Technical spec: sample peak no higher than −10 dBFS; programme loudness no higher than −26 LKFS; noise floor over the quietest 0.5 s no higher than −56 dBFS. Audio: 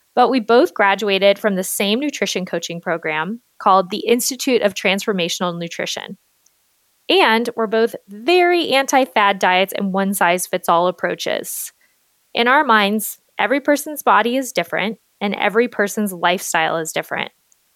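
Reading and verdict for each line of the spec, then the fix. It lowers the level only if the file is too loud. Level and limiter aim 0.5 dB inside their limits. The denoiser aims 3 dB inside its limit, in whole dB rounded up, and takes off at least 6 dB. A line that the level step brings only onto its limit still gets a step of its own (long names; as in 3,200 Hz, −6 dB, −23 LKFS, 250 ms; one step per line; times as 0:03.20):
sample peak −1.5 dBFS: out of spec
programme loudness −17.5 LKFS: out of spec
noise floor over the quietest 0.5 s −62 dBFS: in spec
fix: level −9 dB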